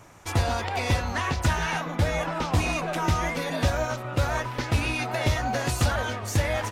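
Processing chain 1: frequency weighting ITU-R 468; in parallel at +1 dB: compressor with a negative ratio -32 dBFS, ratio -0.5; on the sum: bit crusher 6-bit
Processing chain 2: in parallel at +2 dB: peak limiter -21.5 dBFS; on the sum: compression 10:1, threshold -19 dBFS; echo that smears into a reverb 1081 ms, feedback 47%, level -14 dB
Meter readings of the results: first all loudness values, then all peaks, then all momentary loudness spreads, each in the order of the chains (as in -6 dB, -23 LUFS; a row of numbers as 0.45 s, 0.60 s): -21.0 LUFS, -24.0 LUFS; -4.5 dBFS, -10.5 dBFS; 2 LU, 1 LU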